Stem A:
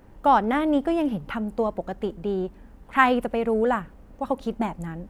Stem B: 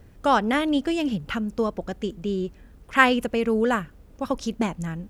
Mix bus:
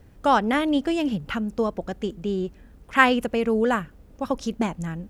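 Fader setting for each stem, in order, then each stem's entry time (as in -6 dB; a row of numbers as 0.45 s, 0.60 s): -13.0 dB, -1.5 dB; 0.00 s, 0.00 s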